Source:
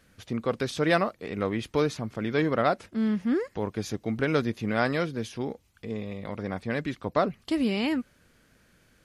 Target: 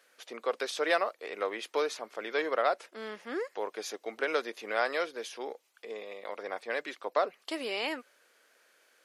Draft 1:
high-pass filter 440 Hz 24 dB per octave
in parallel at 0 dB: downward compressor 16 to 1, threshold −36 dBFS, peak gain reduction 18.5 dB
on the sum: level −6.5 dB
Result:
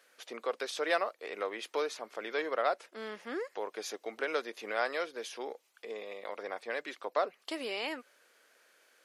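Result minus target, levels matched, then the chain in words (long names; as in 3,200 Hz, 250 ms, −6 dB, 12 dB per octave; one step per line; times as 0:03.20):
downward compressor: peak gain reduction +11 dB
high-pass filter 440 Hz 24 dB per octave
in parallel at 0 dB: downward compressor 16 to 1, threshold −24.5 dBFS, peak gain reduction 7.5 dB
on the sum: level −6.5 dB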